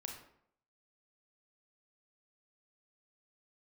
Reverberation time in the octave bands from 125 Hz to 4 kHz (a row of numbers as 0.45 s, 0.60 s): 0.70 s, 0.70 s, 0.70 s, 0.65 s, 0.55 s, 0.40 s